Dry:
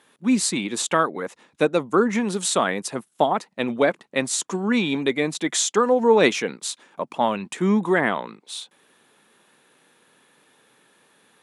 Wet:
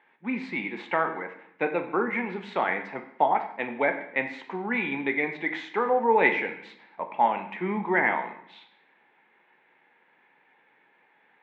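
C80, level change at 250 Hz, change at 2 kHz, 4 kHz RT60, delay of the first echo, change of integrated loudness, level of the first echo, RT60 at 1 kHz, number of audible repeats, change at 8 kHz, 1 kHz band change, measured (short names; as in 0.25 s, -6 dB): 12.5 dB, -9.5 dB, 0.0 dB, 0.65 s, none, -5.0 dB, none, 0.70 s, none, under -40 dB, -1.0 dB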